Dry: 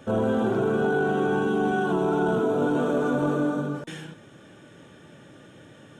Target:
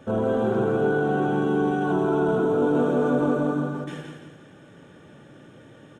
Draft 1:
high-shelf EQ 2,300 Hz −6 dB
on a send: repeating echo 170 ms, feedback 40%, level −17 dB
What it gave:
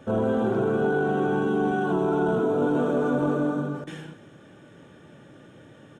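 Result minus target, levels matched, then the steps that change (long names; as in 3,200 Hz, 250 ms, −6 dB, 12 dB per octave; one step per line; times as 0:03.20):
echo-to-direct −11 dB
change: repeating echo 170 ms, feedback 40%, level −6 dB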